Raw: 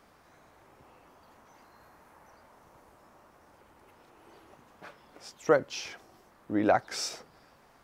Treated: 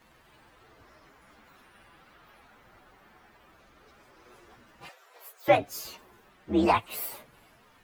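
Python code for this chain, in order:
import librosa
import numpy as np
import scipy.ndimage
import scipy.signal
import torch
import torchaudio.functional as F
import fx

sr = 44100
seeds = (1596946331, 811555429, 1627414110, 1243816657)

y = fx.partial_stretch(x, sr, pct=129)
y = fx.steep_highpass(y, sr, hz=410.0, slope=48, at=(4.89, 5.48))
y = y * 10.0 ** (5.5 / 20.0)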